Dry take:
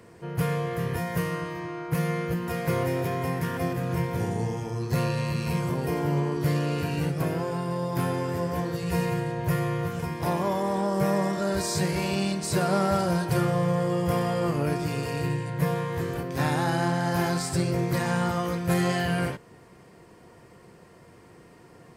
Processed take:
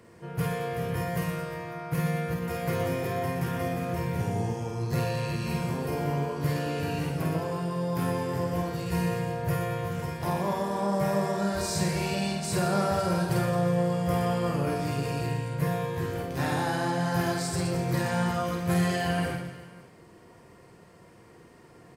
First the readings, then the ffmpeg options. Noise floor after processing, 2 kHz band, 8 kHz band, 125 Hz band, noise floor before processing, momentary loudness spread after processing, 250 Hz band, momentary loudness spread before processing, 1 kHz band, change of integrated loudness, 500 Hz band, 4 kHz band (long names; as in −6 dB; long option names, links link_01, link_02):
−53 dBFS, −1.5 dB, −1.5 dB, −2.0 dB, −52 dBFS, 5 LU, −2.0 dB, 5 LU, −1.0 dB, −2.0 dB, −1.5 dB, −1.5 dB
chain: -af "aecho=1:1:50|120|218|355.2|547.3:0.631|0.398|0.251|0.158|0.1,volume=-3.5dB"